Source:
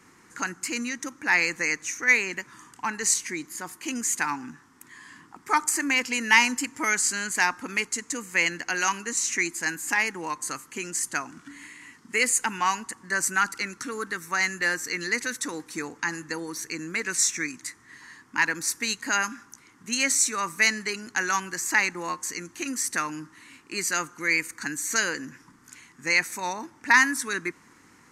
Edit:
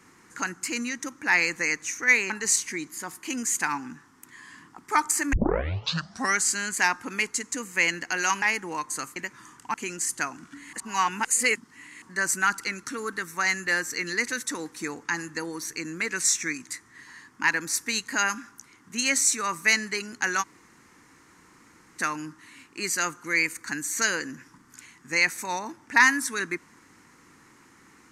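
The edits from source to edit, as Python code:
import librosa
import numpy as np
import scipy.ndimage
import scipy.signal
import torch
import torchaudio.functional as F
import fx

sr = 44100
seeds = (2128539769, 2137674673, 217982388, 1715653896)

y = fx.edit(x, sr, fx.move(start_s=2.3, length_s=0.58, to_s=10.68),
    fx.tape_start(start_s=5.91, length_s=1.07),
    fx.cut(start_s=9.0, length_s=0.94),
    fx.reverse_span(start_s=11.67, length_s=1.29),
    fx.room_tone_fill(start_s=21.36, length_s=1.57, crossfade_s=0.04), tone=tone)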